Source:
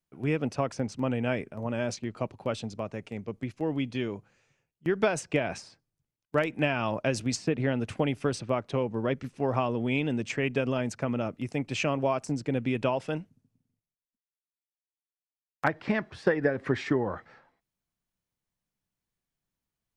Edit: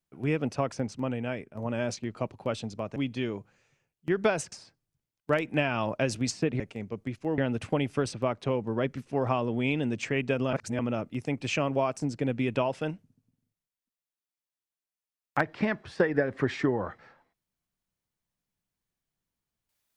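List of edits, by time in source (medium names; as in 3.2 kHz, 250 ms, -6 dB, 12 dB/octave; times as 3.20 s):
0.74–1.55 s: fade out, to -7.5 dB
2.96–3.74 s: move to 7.65 s
5.30–5.57 s: delete
10.80–11.06 s: reverse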